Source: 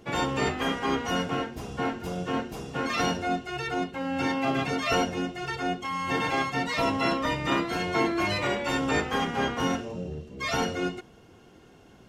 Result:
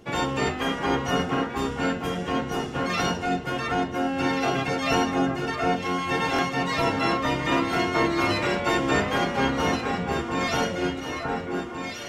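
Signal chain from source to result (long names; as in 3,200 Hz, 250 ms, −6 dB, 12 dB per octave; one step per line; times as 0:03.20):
delay that swaps between a low-pass and a high-pass 715 ms, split 1,800 Hz, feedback 69%, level −3 dB
buffer that repeats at 0:06.34, samples 1,024, times 1
level +1.5 dB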